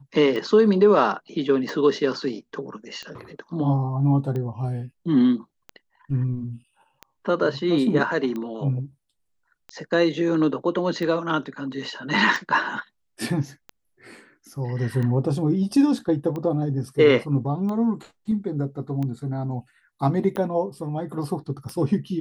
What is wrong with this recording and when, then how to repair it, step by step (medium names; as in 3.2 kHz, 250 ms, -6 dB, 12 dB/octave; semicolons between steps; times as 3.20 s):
tick 45 rpm -20 dBFS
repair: de-click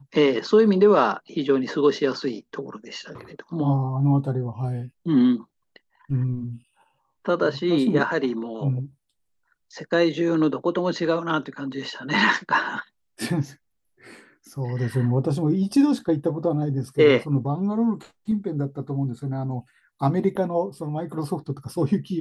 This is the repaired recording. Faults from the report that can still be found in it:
nothing left